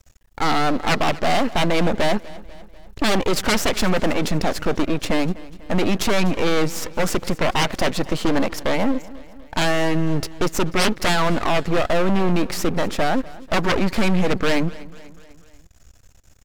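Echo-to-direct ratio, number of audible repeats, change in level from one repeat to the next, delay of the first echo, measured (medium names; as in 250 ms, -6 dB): -18.5 dB, 3, -5.0 dB, 246 ms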